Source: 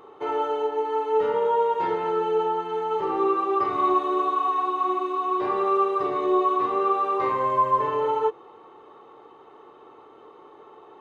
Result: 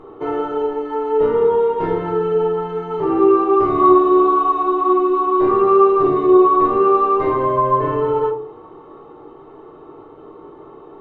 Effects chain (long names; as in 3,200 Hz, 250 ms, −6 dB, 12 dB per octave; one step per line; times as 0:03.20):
spectral tilt −3.5 dB per octave
convolution reverb RT60 0.50 s, pre-delay 3 ms, DRR 1.5 dB
level +3 dB